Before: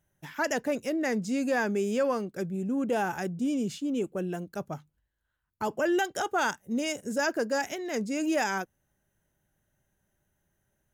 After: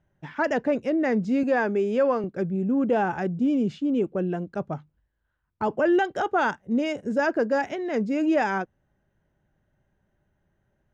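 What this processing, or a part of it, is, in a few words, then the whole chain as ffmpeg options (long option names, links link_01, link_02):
phone in a pocket: -filter_complex "[0:a]asettb=1/sr,asplit=3[link_01][link_02][link_03];[link_01]atrim=end=1.434[link_04];[link_02]atrim=start=1.43:end=2.24,asetpts=PTS-STARTPTS,afade=type=in:duration=0.004:curve=qsin,afade=type=out:start_time=0.806:duration=0.004:curve=qsin,highpass=240[link_05];[link_03]atrim=start=2.236[link_06];[link_04][link_05]acrossfade=duration=0.004:curve1=hsin:curve2=qsin[link_07];[link_07][link_06]acrossfade=duration=0.004:curve1=qsin:curve2=hsin,lowpass=3900,highshelf=frequency=2100:gain=-9,volume=6dB"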